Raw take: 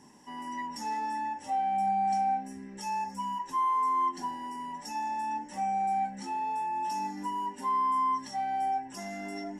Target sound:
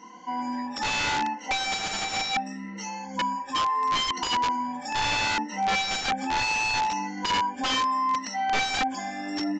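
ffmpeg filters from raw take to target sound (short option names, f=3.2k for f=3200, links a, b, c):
-af "afftfilt=real='re*pow(10,21/40*sin(2*PI*(1.9*log(max(b,1)*sr/1024/100)/log(2)-(0.71)*(pts-256)/sr)))':imag='im*pow(10,21/40*sin(2*PI*(1.9*log(max(b,1)*sr/1024/100)/log(2)-(0.71)*(pts-256)/sr)))':win_size=1024:overlap=0.75,bandreject=f=81.29:t=h:w=4,bandreject=f=162.58:t=h:w=4,bandreject=f=243.87:t=h:w=4,tremolo=f=110:d=0.182,highpass=56,lowshelf=f=370:g=-10.5,aecho=1:1:3.9:0.97,aeval=exprs='(mod(20*val(0)+1,2)-1)/20':c=same,aemphasis=mode=reproduction:type=50fm,aresample=16000,aresample=44100,acontrast=88"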